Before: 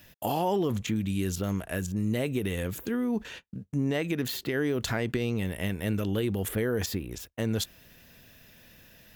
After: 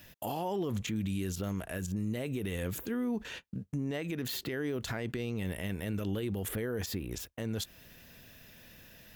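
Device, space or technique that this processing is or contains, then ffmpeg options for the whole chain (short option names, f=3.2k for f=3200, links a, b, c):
stacked limiters: -af "alimiter=limit=-23dB:level=0:latency=1:release=188,alimiter=level_in=2.5dB:limit=-24dB:level=0:latency=1:release=60,volume=-2.5dB"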